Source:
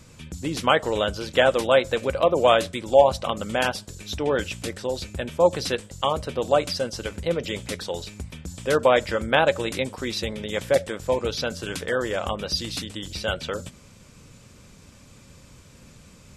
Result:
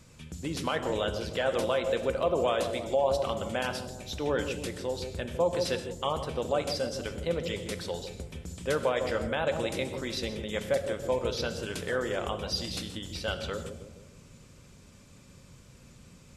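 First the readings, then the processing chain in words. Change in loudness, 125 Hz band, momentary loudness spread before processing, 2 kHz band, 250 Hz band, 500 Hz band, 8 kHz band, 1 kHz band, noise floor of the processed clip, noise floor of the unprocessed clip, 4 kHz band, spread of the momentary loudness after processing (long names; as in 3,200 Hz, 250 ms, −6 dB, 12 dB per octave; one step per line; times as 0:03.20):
−7.5 dB, −4.5 dB, 13 LU, −8.5 dB, −5.0 dB, −7.0 dB, −5.5 dB, −9.0 dB, −54 dBFS, −50 dBFS, −7.0 dB, 9 LU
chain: delay with a low-pass on its return 156 ms, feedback 50%, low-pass 470 Hz, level −4.5 dB
brickwall limiter −12 dBFS, peak gain reduction 9 dB
reverb whose tail is shaped and stops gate 190 ms flat, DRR 9.5 dB
level −6 dB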